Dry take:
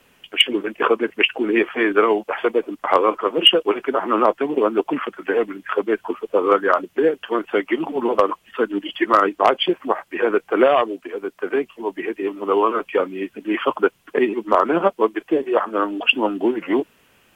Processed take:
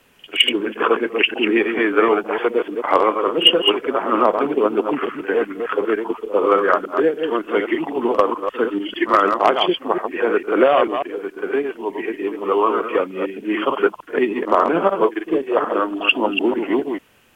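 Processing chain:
delay that plays each chunk backwards 149 ms, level −6 dB
echo ahead of the sound 47 ms −14.5 dB

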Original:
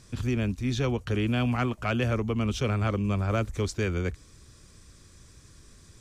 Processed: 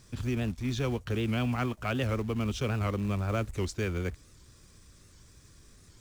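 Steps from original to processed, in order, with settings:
in parallel at −9.5 dB: log-companded quantiser 4 bits
on the sum: wow of a warped record 78 rpm, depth 160 cents
level −6 dB

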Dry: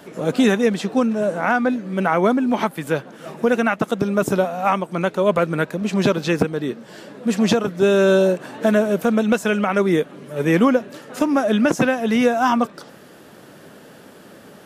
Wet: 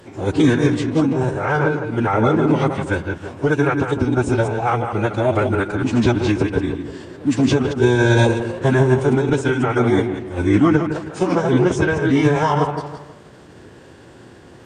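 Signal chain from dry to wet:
delay that plays each chunk backwards 112 ms, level −7.5 dB
low-shelf EQ 150 Hz +10 dB
delay with a low-pass on its return 160 ms, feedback 40%, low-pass 2,400 Hz, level −8 dB
phase-vocoder pitch shift with formants kept −8.5 semitones
level −1 dB

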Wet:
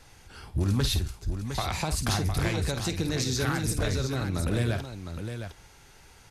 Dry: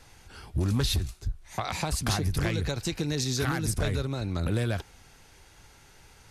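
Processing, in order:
multi-tap delay 51/709 ms −10.5/−8 dB

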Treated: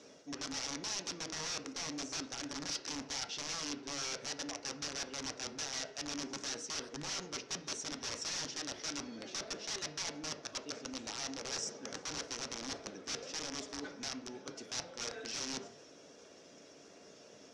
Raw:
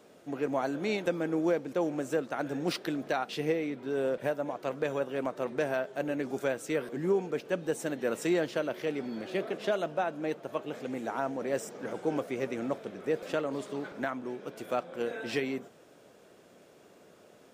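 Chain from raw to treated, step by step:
spectral magnitudes quantised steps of 15 dB
wrap-around overflow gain 28.5 dB
reversed playback
downward compressor 12 to 1, threshold −42 dBFS, peak gain reduction 11 dB
reversed playback
transistor ladder low-pass 6,200 Hz, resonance 70%
high-shelf EQ 4,300 Hz +7 dB
on a send: convolution reverb RT60 0.65 s, pre-delay 4 ms, DRR 7 dB
on the sum: level +10 dB

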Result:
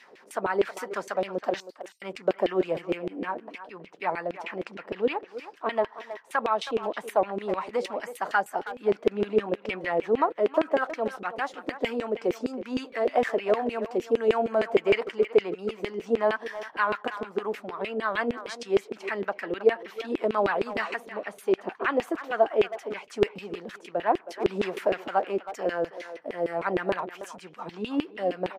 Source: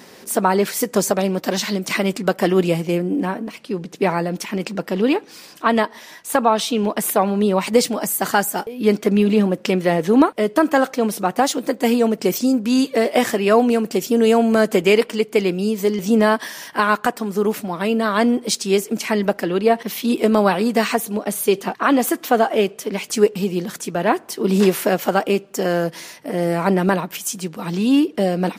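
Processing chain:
0:01.60–0:02.02: inverse Chebyshev band-stop filter 120–1,300 Hz, stop band 80 dB
auto-filter band-pass saw down 6.5 Hz 370–2,800 Hz
far-end echo of a speakerphone 320 ms, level −12 dB
level −1.5 dB

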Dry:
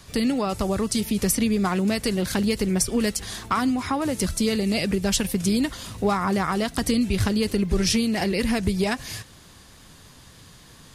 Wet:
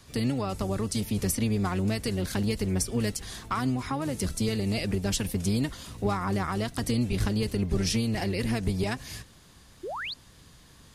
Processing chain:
sub-octave generator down 1 octave, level −1 dB
sound drawn into the spectrogram rise, 0:09.83–0:10.14, 320–4,900 Hz −28 dBFS
level −6.5 dB

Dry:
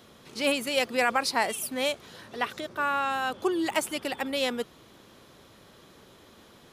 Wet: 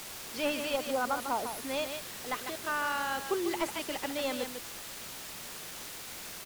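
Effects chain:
healed spectral selection 0:00.82–0:01.67, 1,500–9,100 Hz after
on a send: single-tap delay 154 ms −8 dB
on the sum: bit-depth reduction 6 bits, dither triangular
wrong playback speed 24 fps film run at 25 fps
slew-rate limiting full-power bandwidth 140 Hz
level −5 dB

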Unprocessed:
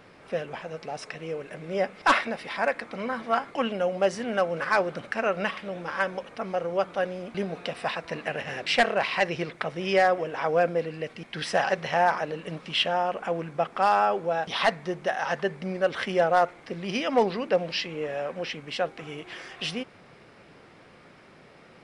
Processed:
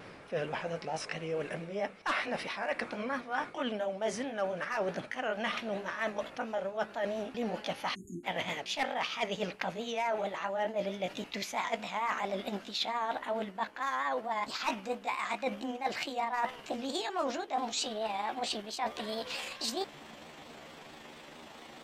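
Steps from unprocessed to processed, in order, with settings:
pitch glide at a constant tempo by +7.5 semitones starting unshifted
reversed playback
downward compressor 5 to 1, threshold −35 dBFS, peak gain reduction 16.5 dB
reversed playback
time-frequency box erased 0:07.95–0:08.24, 390–6,400 Hz
pitch vibrato 4.5 Hz 67 cents
level +3.5 dB

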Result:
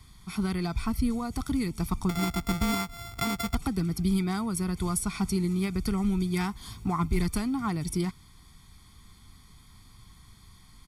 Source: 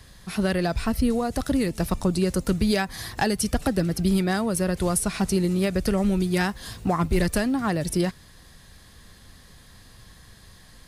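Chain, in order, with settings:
0:02.09–0:03.55: samples sorted by size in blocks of 64 samples
comb filter 0.9 ms, depth 90%
level −8 dB

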